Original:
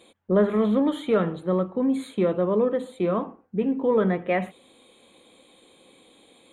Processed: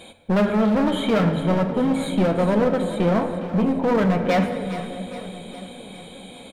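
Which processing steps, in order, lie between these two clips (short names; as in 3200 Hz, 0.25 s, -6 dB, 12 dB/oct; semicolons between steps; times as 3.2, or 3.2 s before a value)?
low shelf 120 Hz +6 dB; comb 1.3 ms, depth 50%; in parallel at +2.5 dB: compressor, threshold -35 dBFS, peak gain reduction 18.5 dB; on the sum: hard clip -20.5 dBFS, distortion -9 dB; split-band echo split 590 Hz, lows 0.62 s, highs 0.41 s, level -12 dB; on a send at -7 dB: reverb RT60 2.4 s, pre-delay 5 ms; on the sum: gain +3.5 dB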